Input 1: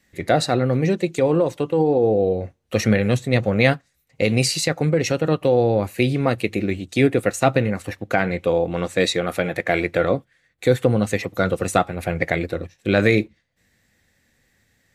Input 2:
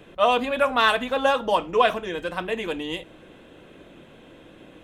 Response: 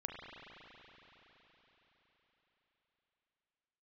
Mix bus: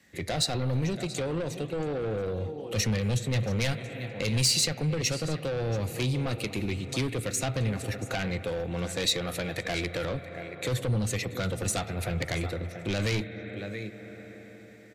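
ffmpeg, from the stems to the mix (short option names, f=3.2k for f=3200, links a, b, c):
-filter_complex "[0:a]highpass=75,volume=1.5dB,asplit=3[a][b][c];[b]volume=-13dB[d];[c]volume=-16.5dB[e];[1:a]alimiter=limit=-23dB:level=0:latency=1,adelay=1100,volume=-15dB[f];[2:a]atrim=start_sample=2205[g];[d][g]afir=irnorm=-1:irlink=0[h];[e]aecho=0:1:680:1[i];[a][f][h][i]amix=inputs=4:normalize=0,asoftclip=type=tanh:threshold=-14.5dB,highshelf=f=9.7k:g=-4.5,acrossover=split=120|3000[j][k][l];[k]acompressor=threshold=-41dB:ratio=2[m];[j][m][l]amix=inputs=3:normalize=0"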